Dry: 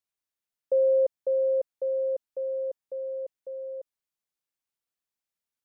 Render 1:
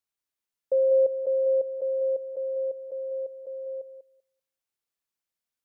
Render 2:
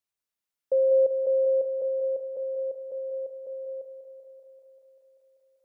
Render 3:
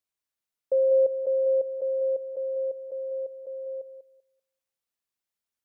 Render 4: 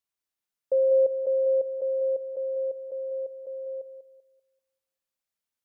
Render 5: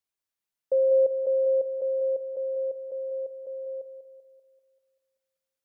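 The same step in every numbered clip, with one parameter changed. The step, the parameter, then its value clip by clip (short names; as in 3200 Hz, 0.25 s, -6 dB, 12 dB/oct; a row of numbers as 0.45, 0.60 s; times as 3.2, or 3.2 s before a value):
thinning echo, feedback: 16, 91, 24, 39, 62%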